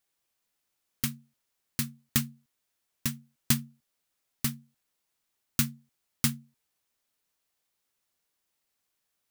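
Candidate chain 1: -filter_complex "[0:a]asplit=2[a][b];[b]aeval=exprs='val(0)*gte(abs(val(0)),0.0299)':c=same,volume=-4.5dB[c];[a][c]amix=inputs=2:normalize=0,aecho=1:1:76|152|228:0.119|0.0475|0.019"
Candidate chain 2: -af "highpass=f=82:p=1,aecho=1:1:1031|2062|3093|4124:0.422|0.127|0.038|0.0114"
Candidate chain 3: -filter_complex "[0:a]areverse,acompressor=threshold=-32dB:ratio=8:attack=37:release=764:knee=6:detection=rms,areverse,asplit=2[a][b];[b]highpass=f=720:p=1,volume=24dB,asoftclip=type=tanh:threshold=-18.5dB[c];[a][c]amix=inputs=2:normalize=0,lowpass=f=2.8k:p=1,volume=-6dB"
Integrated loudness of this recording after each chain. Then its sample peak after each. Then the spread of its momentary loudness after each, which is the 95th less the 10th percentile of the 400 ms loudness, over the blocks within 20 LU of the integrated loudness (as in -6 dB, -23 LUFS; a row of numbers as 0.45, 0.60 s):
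-27.5, -33.0, -37.5 LUFS; -2.5, -7.5, -21.5 dBFS; 15, 19, 10 LU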